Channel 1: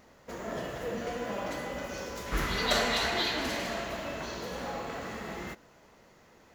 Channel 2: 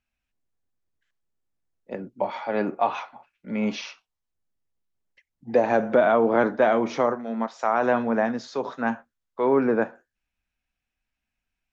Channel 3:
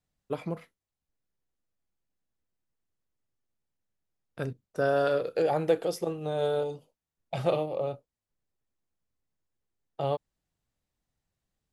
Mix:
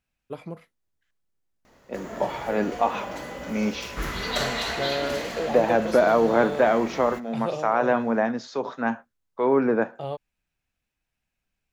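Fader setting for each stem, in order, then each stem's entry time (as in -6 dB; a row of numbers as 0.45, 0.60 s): +0.5, 0.0, -3.0 dB; 1.65, 0.00, 0.00 s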